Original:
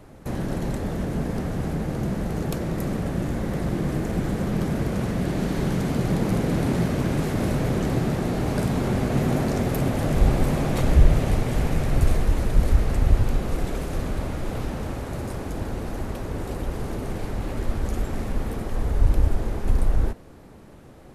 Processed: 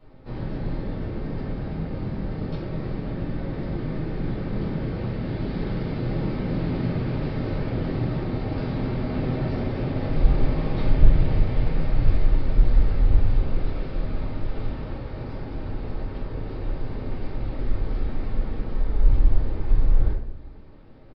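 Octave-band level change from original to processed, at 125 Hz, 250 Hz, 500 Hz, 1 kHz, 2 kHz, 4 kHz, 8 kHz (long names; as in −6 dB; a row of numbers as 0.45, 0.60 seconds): −2.0 dB, −4.0 dB, −4.5 dB, −5.5 dB, −5.5 dB, −6.0 dB, below −30 dB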